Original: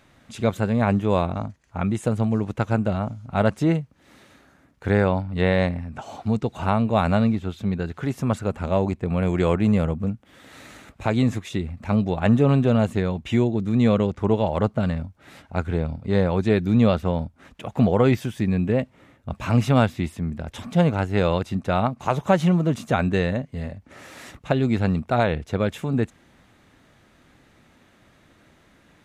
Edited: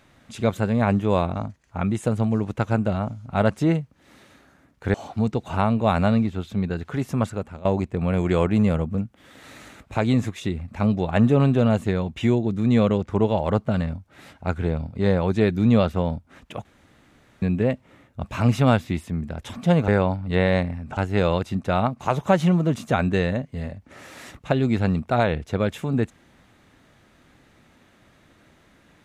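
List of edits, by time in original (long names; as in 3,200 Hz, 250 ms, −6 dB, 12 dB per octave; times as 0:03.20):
0:04.94–0:06.03: move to 0:20.97
0:08.31–0:08.74: fade out, to −19 dB
0:17.74–0:18.51: fill with room tone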